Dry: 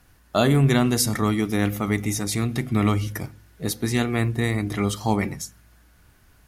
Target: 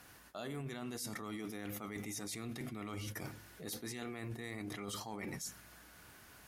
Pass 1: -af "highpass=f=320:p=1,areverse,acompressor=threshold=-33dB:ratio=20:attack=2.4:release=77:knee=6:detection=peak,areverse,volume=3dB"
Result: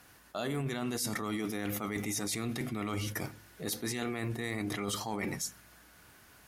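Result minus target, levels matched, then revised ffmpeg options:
compressor: peak gain reduction -8.5 dB
-af "highpass=f=320:p=1,areverse,acompressor=threshold=-42dB:ratio=20:attack=2.4:release=77:knee=6:detection=peak,areverse,volume=3dB"

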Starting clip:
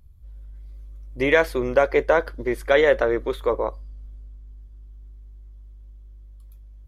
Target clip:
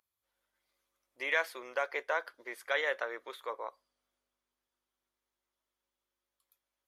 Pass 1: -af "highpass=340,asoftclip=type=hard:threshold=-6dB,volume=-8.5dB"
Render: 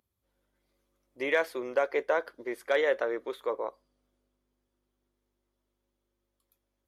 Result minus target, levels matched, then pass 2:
250 Hz band +9.5 dB
-af "highpass=920,asoftclip=type=hard:threshold=-6dB,volume=-8.5dB"

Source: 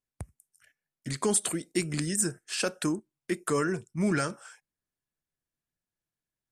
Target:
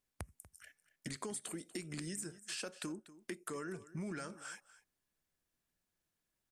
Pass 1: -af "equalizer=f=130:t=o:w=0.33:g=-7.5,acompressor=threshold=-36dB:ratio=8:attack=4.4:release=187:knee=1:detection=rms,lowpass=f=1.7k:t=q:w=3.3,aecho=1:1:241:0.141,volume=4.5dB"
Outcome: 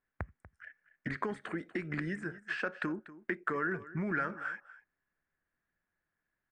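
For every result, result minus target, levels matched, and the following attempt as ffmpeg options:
2000 Hz band +6.5 dB; compressor: peak gain reduction -6.5 dB
-af "equalizer=f=130:t=o:w=0.33:g=-7.5,acompressor=threshold=-36dB:ratio=8:attack=4.4:release=187:knee=1:detection=rms,aecho=1:1:241:0.141,volume=4.5dB"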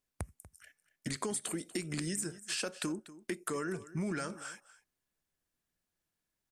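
compressor: peak gain reduction -6.5 dB
-af "equalizer=f=130:t=o:w=0.33:g=-7.5,acompressor=threshold=-43.5dB:ratio=8:attack=4.4:release=187:knee=1:detection=rms,aecho=1:1:241:0.141,volume=4.5dB"

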